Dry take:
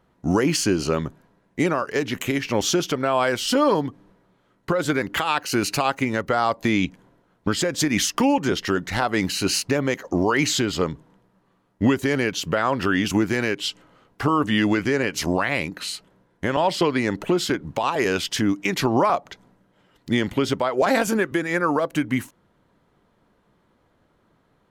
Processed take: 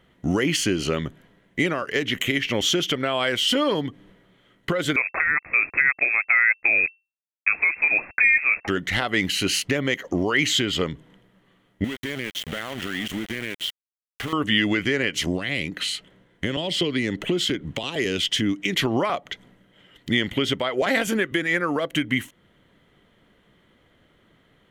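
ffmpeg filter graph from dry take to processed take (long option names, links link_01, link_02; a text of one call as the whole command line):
ffmpeg -i in.wav -filter_complex "[0:a]asettb=1/sr,asplit=3[link_01][link_02][link_03];[link_01]atrim=end=4.964[link_04];[link_02]atrim=start=4.96:end=8.68,asetpts=PTS-STARTPTS,afade=type=in:duration=0.004:curve=qsin,afade=type=out:start_time=3.716:duration=0.004:curve=qsin,acrusher=bits=4:mix=0:aa=0.5,lowpass=frequency=2300:width_type=q:width=0.5098,lowpass=frequency=2300:width_type=q:width=0.6013,lowpass=frequency=2300:width_type=q:width=0.9,lowpass=frequency=2300:width_type=q:width=2.563,afreqshift=-2700[link_05];[link_03]atrim=start=8.676[link_06];[link_04][link_05]acrossfade=duration=0.004:curve1=hsin:curve2=qsin[link_07];[link_07][link_06]acrossfade=duration=0.004:curve1=qsin:curve2=hsin,asettb=1/sr,asplit=3[link_08][link_09][link_10];[link_08]atrim=end=11.844[link_11];[link_09]atrim=start=11.84:end=14.33,asetpts=PTS-STARTPTS,afade=type=in:duration=0.004:curve=qsin,afade=type=out:start_time=2.486:duration=0.004:curve=qsin,equalizer=frequency=220:width_type=o:width=0.47:gain=6,acompressor=threshold=-38dB:ratio=2:attack=3.2:release=140:knee=1:detection=peak,aeval=exprs='val(0)*gte(abs(val(0)),0.0211)':channel_layout=same[link_12];[link_10]atrim=start=14.326[link_13];[link_11][link_12]acrossfade=duration=0.004:curve1=hsin:curve2=qsin[link_14];[link_14][link_13]acrossfade=duration=0.004:curve1=qsin:curve2=hsin,asettb=1/sr,asplit=3[link_15][link_16][link_17];[link_15]atrim=end=15.104[link_18];[link_16]atrim=start=15.1:end=18.75,asetpts=PTS-STARTPTS,afade=type=in:duration=0.004:curve=qsin,afade=type=out:start_time=3.646:duration=0.004:curve=qsin,equalizer=frequency=12000:width_type=o:width=0.23:gain=-7,acrossover=split=490|3000[link_19][link_20][link_21];[link_20]acompressor=threshold=-34dB:ratio=6:attack=3.2:release=140:knee=2.83:detection=peak[link_22];[link_19][link_22][link_21]amix=inputs=3:normalize=0[link_23];[link_17]atrim=start=18.746[link_24];[link_18][link_23]acrossfade=duration=0.004:curve1=hsin:curve2=qsin[link_25];[link_25][link_24]acrossfade=duration=0.004:curve1=qsin:curve2=hsin,equalizer=frequency=2000:width_type=o:width=0.33:gain=9,equalizer=frequency=3150:width_type=o:width=0.33:gain=12,equalizer=frequency=5000:width_type=o:width=0.33:gain=-4,acompressor=threshold=-32dB:ratio=1.5,equalizer=frequency=920:width_type=o:width=0.63:gain=-6,volume=3.5dB" out.wav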